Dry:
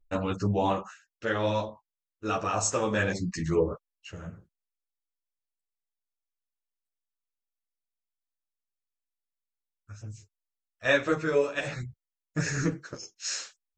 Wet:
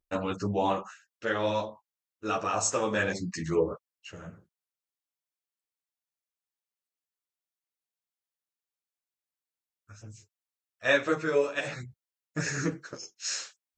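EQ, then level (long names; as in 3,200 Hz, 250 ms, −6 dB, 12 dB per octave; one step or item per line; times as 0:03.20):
high-pass filter 190 Hz 6 dB per octave
0.0 dB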